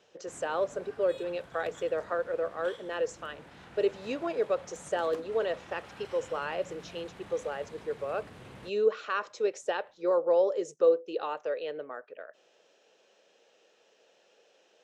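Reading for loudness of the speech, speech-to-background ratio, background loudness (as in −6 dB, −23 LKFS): −32.0 LKFS, 18.0 dB, −50.0 LKFS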